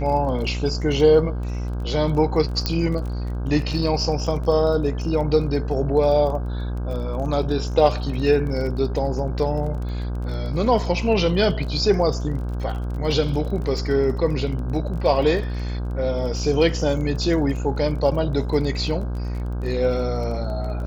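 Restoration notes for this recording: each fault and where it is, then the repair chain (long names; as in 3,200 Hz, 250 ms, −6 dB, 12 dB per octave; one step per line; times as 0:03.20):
mains buzz 60 Hz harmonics 27 −26 dBFS
surface crackle 25 per second −31 dBFS
0:02.66: click −8 dBFS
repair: click removal
hum removal 60 Hz, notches 27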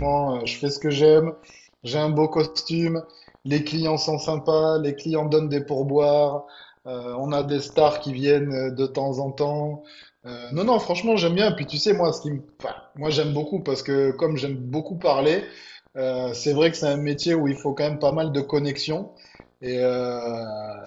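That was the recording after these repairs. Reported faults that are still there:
none of them is left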